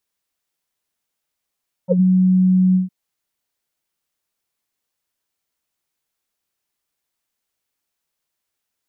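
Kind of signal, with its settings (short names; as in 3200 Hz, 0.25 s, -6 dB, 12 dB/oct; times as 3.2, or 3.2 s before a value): synth note square F#3 24 dB/oct, low-pass 200 Hz, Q 9, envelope 2 oct, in 0.11 s, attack 43 ms, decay 0.09 s, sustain -9 dB, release 0.14 s, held 0.87 s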